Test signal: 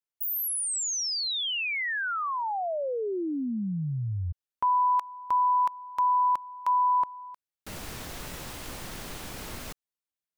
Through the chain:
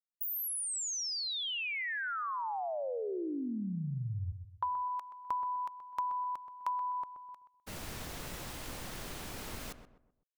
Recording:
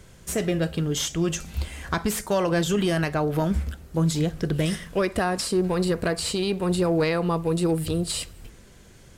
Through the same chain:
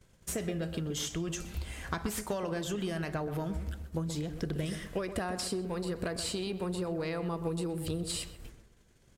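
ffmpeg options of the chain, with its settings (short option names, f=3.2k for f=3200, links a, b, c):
-filter_complex "[0:a]acompressor=threshold=-31dB:ratio=6:attack=48:release=183:knee=6:detection=peak,agate=range=-20dB:threshold=-42dB:ratio=3:release=124:detection=peak,asplit=2[a][b];[b]adelay=127,lowpass=f=1.4k:p=1,volume=-9dB,asplit=2[c][d];[d]adelay=127,lowpass=f=1.4k:p=1,volume=0.38,asplit=2[e][f];[f]adelay=127,lowpass=f=1.4k:p=1,volume=0.38,asplit=2[g][h];[h]adelay=127,lowpass=f=1.4k:p=1,volume=0.38[i];[a][c][e][g][i]amix=inputs=5:normalize=0,volume=-4dB"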